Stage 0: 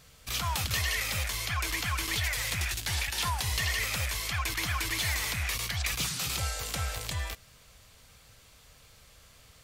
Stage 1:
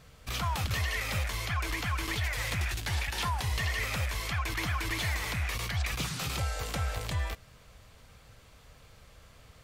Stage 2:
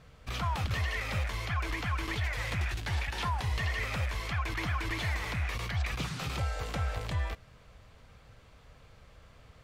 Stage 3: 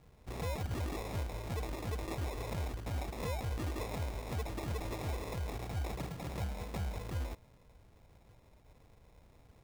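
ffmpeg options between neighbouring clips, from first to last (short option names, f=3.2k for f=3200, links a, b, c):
-af "highshelf=f=2.7k:g=-11,alimiter=level_in=2.5dB:limit=-24dB:level=0:latency=1:release=155,volume=-2.5dB,volume=4dB"
-af "lowpass=f=2.9k:p=1"
-af "acrusher=samples=29:mix=1:aa=0.000001,volume=-5.5dB"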